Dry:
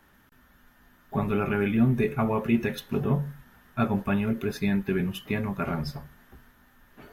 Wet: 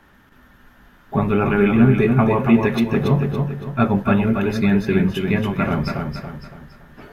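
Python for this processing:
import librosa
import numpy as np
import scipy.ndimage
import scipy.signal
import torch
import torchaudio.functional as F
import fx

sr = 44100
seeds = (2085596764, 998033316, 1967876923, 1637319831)

y = fx.high_shelf(x, sr, hz=7100.0, db=-11.5)
y = fx.echo_feedback(y, sr, ms=281, feedback_pct=39, wet_db=-5)
y = F.gain(torch.from_numpy(y), 8.0).numpy()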